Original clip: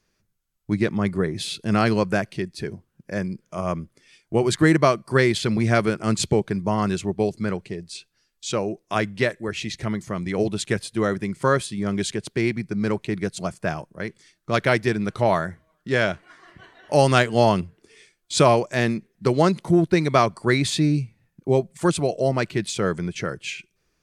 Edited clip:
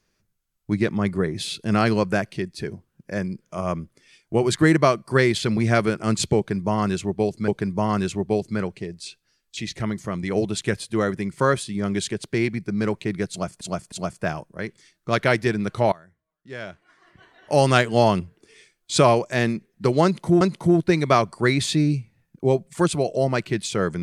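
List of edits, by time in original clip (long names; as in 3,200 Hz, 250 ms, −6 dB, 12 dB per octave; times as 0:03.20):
0:06.37–0:07.48: repeat, 2 plays
0:08.46–0:09.60: remove
0:13.33–0:13.64: repeat, 3 plays
0:15.33–0:17.08: fade in quadratic, from −23.5 dB
0:19.45–0:19.82: repeat, 2 plays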